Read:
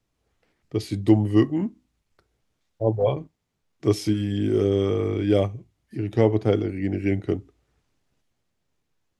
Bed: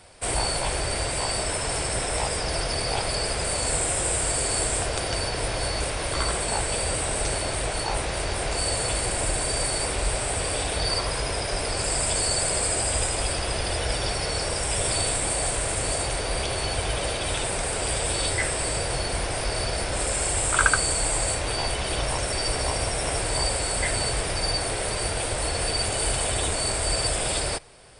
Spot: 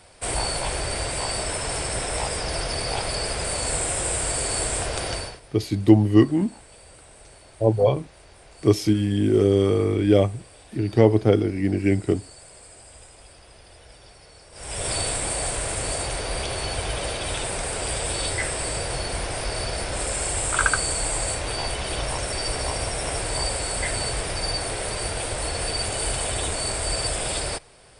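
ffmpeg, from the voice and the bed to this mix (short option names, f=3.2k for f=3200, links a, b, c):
-filter_complex "[0:a]adelay=4800,volume=3dB[a];[1:a]volume=20.5dB,afade=t=out:st=5.1:d=0.3:silence=0.0841395,afade=t=in:st=14.52:d=0.4:silence=0.0891251[b];[a][b]amix=inputs=2:normalize=0"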